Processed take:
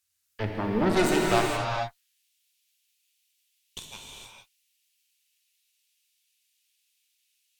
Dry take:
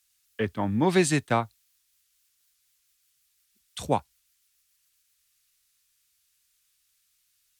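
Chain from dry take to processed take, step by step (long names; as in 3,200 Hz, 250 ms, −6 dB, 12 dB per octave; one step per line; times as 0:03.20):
high-pass filter sweep 77 Hz → 2,700 Hz, 0:00.46–0:01.91
harmonic generator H 6 −10 dB, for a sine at −7.5 dBFS
reverb whose tail is shaped and stops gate 490 ms flat, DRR −1.5 dB
level −8 dB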